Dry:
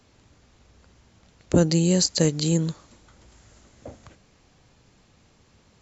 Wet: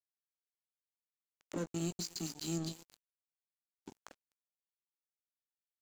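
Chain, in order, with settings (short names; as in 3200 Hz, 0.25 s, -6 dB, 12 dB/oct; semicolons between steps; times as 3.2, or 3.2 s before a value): compressor 6:1, threshold -29 dBFS, peak gain reduction 15 dB; steep high-pass 180 Hz 48 dB/oct; step gate "xxxxx.xx.x.xxxx" 181 bpm; on a send: thinning echo 0.252 s, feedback 38%, high-pass 410 Hz, level -11 dB; on the sum: spectral delete 1.7–4.06, 410–2200 Hz; de-hum 237.5 Hz, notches 34; limiter -30 dBFS, peak gain reduction 15 dB; doubler 18 ms -6.5 dB; crossover distortion -44.5 dBFS; gain +2.5 dB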